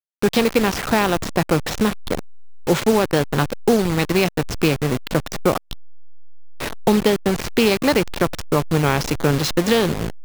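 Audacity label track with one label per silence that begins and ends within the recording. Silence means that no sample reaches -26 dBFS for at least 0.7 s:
5.730000	6.600000	silence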